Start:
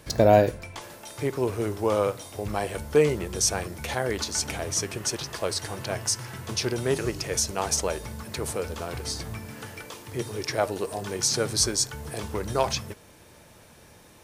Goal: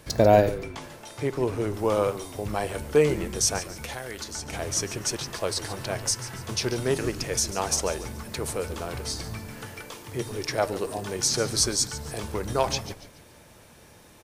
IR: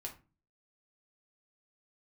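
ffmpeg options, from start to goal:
-filter_complex "[0:a]asettb=1/sr,asplit=3[s0][s1][s2];[s0]atrim=end=0.584[s3];[s1]atrim=start=0.58:end=1.74,asetpts=PTS-STARTPTS,afade=t=in:d=0.004:c=qsin,afade=t=out:st=1.156:d=0.004:c=qsin,highshelf=f=11000:g=-11[s4];[s2]atrim=start=1.736[s5];[s3][s4]acrossfade=d=0.004:c1=hsin:c2=qsin[s6];[s6][s5]acrossfade=d=0.004:c1=qsin:c2=hsin,asettb=1/sr,asplit=3[s7][s8][s9];[s7]atrim=end=3.584[s10];[s8]atrim=start=3.58:end=4.53,asetpts=PTS-STARTPTS,afade=t=in:d=0.004:c=qsin,afade=t=out:st=0.946:d=0.004:c=qsin,acrossover=split=1400|7200[s11][s12][s13];[s11]acompressor=threshold=0.0141:ratio=4[s14];[s12]acompressor=threshold=0.0126:ratio=4[s15];[s13]acompressor=threshold=0.00708:ratio=4[s16];[s14][s15][s16]amix=inputs=3:normalize=0[s17];[s9]atrim=start=4.526[s18];[s10][s17]acrossfade=d=0.004:c1=hsin:c2=qsin[s19];[s19][s18]acrossfade=d=0.004:c1=qsin:c2=hsin,asplit=5[s20][s21][s22][s23][s24];[s21]adelay=142,afreqshift=-120,volume=0.2[s25];[s22]adelay=284,afreqshift=-240,volume=0.0776[s26];[s23]adelay=426,afreqshift=-360,volume=0.0302[s27];[s24]adelay=568,afreqshift=-480,volume=0.0119[s28];[s20][s25][s26][s27][s28]amix=inputs=5:normalize=0"

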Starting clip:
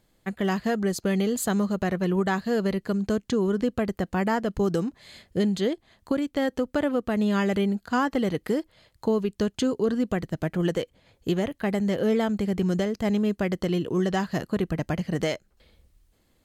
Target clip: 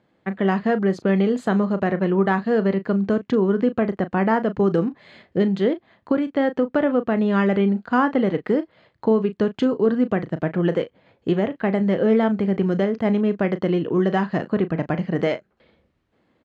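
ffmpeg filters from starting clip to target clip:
-filter_complex "[0:a]highpass=150,lowpass=2200,asplit=2[s0][s1];[s1]adelay=36,volume=0.237[s2];[s0][s2]amix=inputs=2:normalize=0,volume=1.88"

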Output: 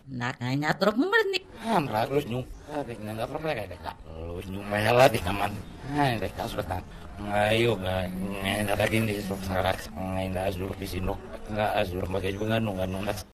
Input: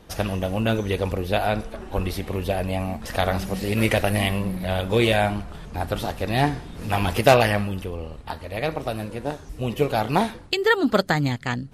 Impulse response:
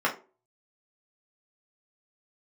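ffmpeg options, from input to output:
-filter_complex "[0:a]areverse,bandreject=f=50:t=h:w=6,bandreject=f=100:t=h:w=6,bandreject=f=150:t=h:w=6,bandreject=f=200:t=h:w=6,asplit=2[s0][s1];[1:a]atrim=start_sample=2205,lowshelf=f=190:g=-2.5[s2];[s1][s2]afir=irnorm=-1:irlink=0,volume=0.0531[s3];[s0][s3]amix=inputs=2:normalize=0,atempo=0.88,volume=0.596"

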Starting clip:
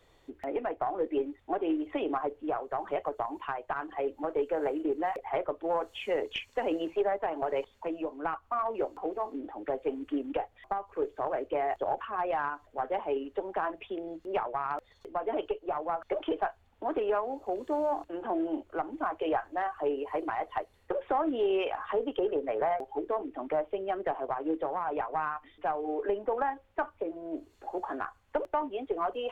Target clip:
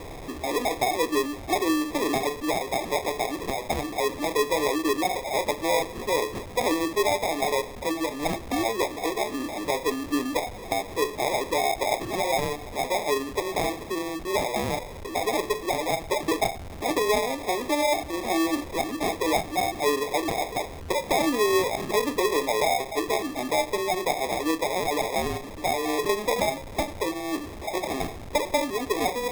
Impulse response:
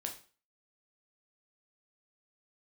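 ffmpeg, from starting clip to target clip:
-filter_complex "[0:a]aeval=exprs='val(0)+0.5*0.015*sgn(val(0))':c=same,asplit=2[s0][s1];[1:a]atrim=start_sample=2205,lowpass=1800[s2];[s1][s2]afir=irnorm=-1:irlink=0,volume=0.501[s3];[s0][s3]amix=inputs=2:normalize=0,acrusher=samples=30:mix=1:aa=0.000001,volume=1.19"

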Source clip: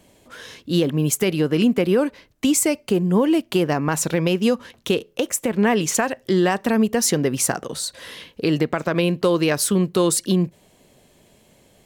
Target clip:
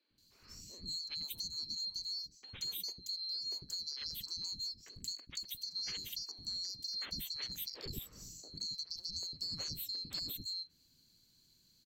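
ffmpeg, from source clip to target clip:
-filter_complex "[0:a]afftfilt=real='real(if(lt(b,736),b+184*(1-2*mod(floor(b/184),2)),b),0)':imag='imag(if(lt(b,736),b+184*(1-2*mod(floor(b/184),2)),b),0)':win_size=2048:overlap=0.75,firequalizer=gain_entry='entry(170,0);entry(710,-19);entry(3200,-12)':delay=0.05:min_phase=1,acompressor=threshold=0.0126:ratio=3,acrossover=split=350|2900[s0][s1][s2];[s0]adelay=100[s3];[s2]adelay=180[s4];[s3][s1][s4]amix=inputs=3:normalize=0,volume=0.841"

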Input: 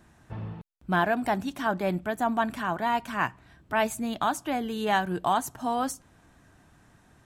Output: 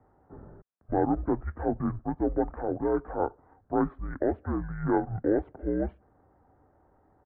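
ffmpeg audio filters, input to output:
-af "aeval=exprs='0.251*(cos(1*acos(clip(val(0)/0.251,-1,1)))-cos(1*PI/2))+0.00398*(cos(6*acos(clip(val(0)/0.251,-1,1)))-cos(6*PI/2))':c=same,highpass=f=250:t=q:w=0.5412,highpass=f=250:t=q:w=1.307,lowpass=f=3200:t=q:w=0.5176,lowpass=f=3200:t=q:w=0.7071,lowpass=f=3200:t=q:w=1.932,afreqshift=-140,asetrate=23361,aresample=44100,atempo=1.88775"

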